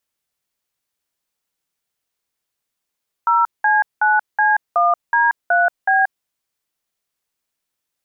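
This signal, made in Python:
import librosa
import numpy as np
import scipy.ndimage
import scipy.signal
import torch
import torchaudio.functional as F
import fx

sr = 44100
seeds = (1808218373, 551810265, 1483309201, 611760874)

y = fx.dtmf(sr, digits='0C9C1D3B', tone_ms=181, gap_ms=191, level_db=-14.5)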